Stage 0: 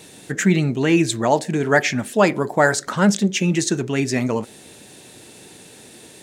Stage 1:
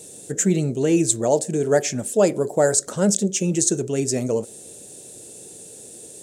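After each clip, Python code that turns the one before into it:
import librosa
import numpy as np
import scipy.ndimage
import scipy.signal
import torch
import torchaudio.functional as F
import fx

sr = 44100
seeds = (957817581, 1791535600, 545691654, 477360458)

y = fx.graphic_eq(x, sr, hz=(250, 500, 1000, 2000, 4000, 8000), db=(-3, 8, -9, -10, -5, 12))
y = y * 10.0 ** (-2.5 / 20.0)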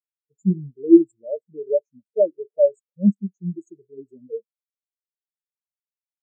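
y = fx.fold_sine(x, sr, drive_db=6, ceiling_db=-1.0)
y = fx.spectral_expand(y, sr, expansion=4.0)
y = y * 10.0 ** (-1.5 / 20.0)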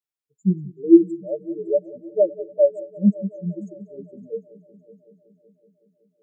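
y = fx.echo_heads(x, sr, ms=187, heads='first and third', feedback_pct=58, wet_db=-20.5)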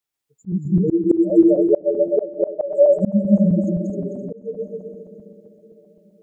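y = fx.reverse_delay_fb(x, sr, ms=130, feedback_pct=61, wet_db=-0.5)
y = fx.auto_swell(y, sr, attack_ms=323.0)
y = y * 10.0 ** (7.0 / 20.0)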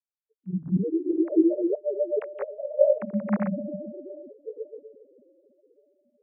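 y = fx.sine_speech(x, sr)
y = y * 10.0 ** (-8.5 / 20.0)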